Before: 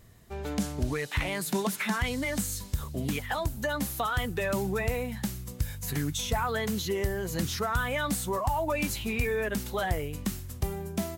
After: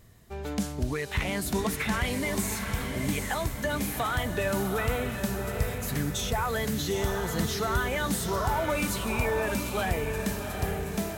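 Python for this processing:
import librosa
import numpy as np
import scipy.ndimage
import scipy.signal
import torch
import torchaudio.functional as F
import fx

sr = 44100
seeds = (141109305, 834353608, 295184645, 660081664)

y = fx.echo_diffused(x, sr, ms=769, feedback_pct=48, wet_db=-5.0)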